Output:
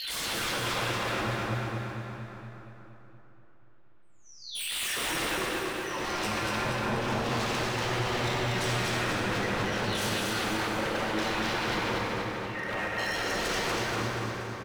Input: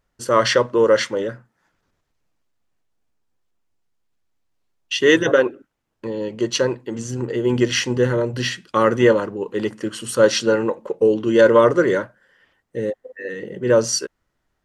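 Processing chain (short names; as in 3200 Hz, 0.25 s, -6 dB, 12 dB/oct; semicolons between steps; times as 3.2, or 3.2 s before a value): spectral delay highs early, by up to 0.888 s; LPF 3000 Hz 24 dB/oct; compressor 8:1, threshold -31 dBFS, peak gain reduction 20 dB; wavefolder -38.5 dBFS; on a send: feedback echo 0.238 s, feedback 52%, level -3.5 dB; on the sum: plate-style reverb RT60 3.7 s, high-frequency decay 0.65×, DRR -2.5 dB; gain +7 dB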